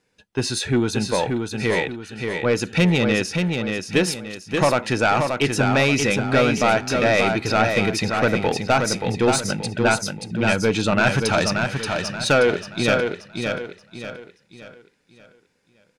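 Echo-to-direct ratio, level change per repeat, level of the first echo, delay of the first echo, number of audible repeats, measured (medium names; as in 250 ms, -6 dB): -4.5 dB, -8.5 dB, -5.0 dB, 579 ms, 4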